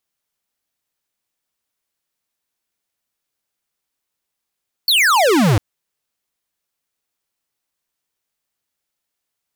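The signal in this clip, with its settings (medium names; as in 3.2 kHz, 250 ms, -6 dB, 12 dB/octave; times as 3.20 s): laser zap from 4.6 kHz, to 93 Hz, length 0.70 s square, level -13 dB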